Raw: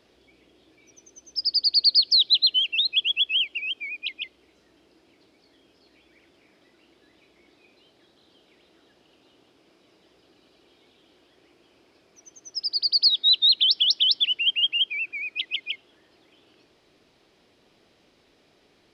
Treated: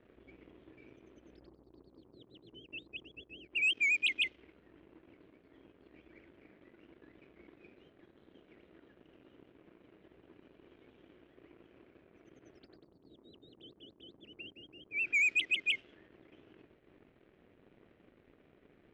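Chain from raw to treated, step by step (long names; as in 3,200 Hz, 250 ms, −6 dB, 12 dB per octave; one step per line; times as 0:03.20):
treble cut that deepens with the level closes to 540 Hz, closed at −21.5 dBFS
phaser with its sweep stopped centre 2,300 Hz, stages 4
leveller curve on the samples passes 2
low-pass that shuts in the quiet parts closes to 1,400 Hz, open at −22 dBFS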